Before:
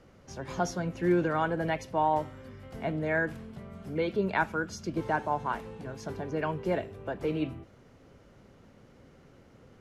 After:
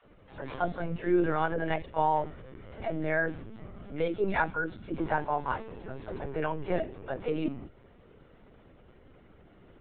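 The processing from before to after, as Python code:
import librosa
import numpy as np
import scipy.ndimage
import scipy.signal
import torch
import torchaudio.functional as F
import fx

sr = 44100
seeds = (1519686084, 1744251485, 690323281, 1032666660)

y = fx.dispersion(x, sr, late='lows', ms=65.0, hz=370.0)
y = fx.lpc_vocoder(y, sr, seeds[0], excitation='pitch_kept', order=16)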